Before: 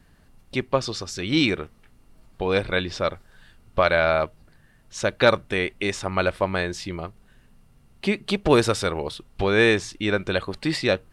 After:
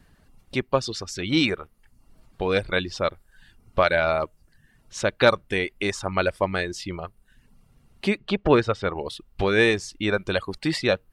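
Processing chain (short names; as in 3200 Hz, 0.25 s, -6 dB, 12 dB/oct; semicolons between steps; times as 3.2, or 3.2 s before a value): reverb removal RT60 0.61 s; 8.17–8.96 LPF 3700 Hz -> 2300 Hz 12 dB/oct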